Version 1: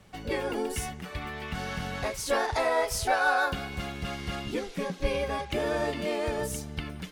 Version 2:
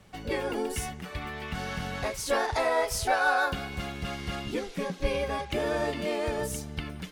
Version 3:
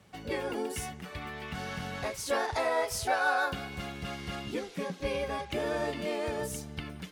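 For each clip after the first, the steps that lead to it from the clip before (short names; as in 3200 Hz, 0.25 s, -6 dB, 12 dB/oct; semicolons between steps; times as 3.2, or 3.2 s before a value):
nothing audible
HPF 69 Hz; gain -3 dB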